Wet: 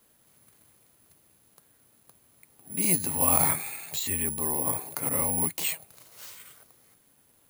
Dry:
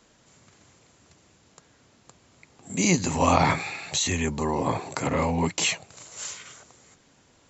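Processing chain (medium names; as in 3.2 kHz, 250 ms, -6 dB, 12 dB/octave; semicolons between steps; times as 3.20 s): careless resampling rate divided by 4×, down filtered, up zero stuff; trim -8.5 dB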